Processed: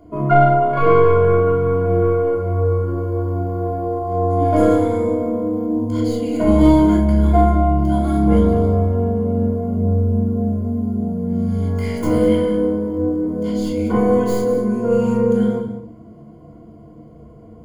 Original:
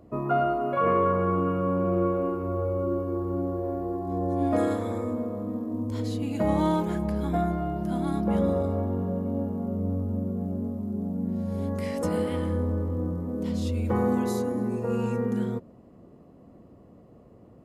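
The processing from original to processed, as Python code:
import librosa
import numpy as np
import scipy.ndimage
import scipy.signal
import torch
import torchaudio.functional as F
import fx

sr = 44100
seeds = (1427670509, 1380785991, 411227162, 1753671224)

y = fx.tracing_dist(x, sr, depth_ms=0.065)
y = fx.ripple_eq(y, sr, per_octave=1.8, db=13)
y = y + 10.0 ** (-13.0 / 20.0) * np.pad(y, (int(197 * sr / 1000.0), 0))[:len(y)]
y = fx.room_shoebox(y, sr, seeds[0], volume_m3=630.0, walls='furnished', distance_m=3.2)
y = y * librosa.db_to_amplitude(1.0)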